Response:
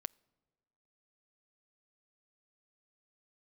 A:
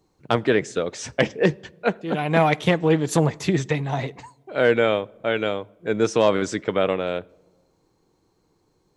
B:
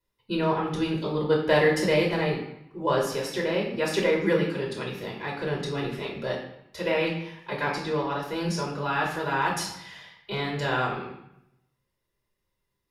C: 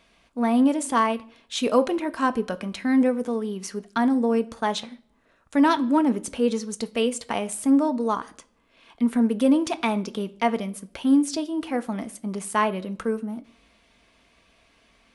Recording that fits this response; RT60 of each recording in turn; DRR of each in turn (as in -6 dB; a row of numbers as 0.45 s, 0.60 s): A; 1.4 s, 0.80 s, 0.50 s; 19.5 dB, -2.0 dB, 10.0 dB